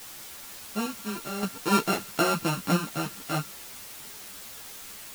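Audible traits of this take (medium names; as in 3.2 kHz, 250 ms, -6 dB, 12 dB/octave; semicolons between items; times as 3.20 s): a buzz of ramps at a fixed pitch in blocks of 32 samples; random-step tremolo, depth 85%; a quantiser's noise floor 8-bit, dither triangular; a shimmering, thickened sound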